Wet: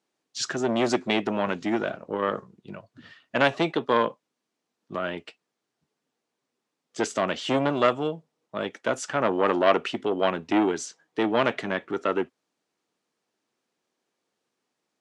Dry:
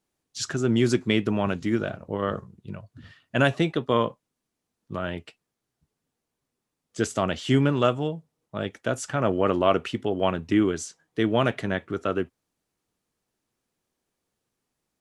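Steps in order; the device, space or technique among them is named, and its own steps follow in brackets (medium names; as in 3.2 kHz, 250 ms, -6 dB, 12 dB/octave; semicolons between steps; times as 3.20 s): public-address speaker with an overloaded transformer (transformer saturation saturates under 1 kHz; band-pass 250–6700 Hz); trim +3 dB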